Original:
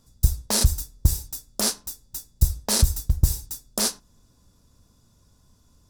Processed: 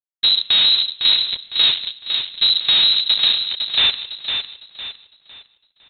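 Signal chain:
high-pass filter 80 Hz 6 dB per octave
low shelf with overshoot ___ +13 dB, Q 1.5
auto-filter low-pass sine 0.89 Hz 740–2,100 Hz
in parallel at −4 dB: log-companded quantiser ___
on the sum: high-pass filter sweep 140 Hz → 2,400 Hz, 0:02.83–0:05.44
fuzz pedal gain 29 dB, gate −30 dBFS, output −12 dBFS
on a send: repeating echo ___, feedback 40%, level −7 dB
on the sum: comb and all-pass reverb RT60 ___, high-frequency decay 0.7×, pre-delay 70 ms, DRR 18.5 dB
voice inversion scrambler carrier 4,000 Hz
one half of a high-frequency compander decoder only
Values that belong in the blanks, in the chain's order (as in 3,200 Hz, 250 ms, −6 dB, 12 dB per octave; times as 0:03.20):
530 Hz, 6 bits, 506 ms, 0.73 s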